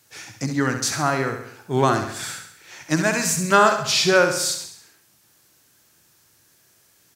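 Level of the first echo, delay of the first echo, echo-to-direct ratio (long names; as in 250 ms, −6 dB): −7.5 dB, 67 ms, −6.0 dB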